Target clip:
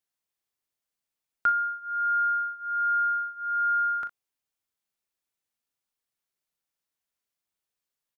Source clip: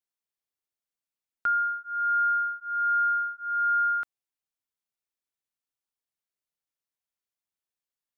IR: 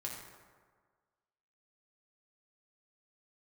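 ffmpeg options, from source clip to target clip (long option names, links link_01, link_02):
-af "aecho=1:1:40|62:0.299|0.158,volume=3.5dB"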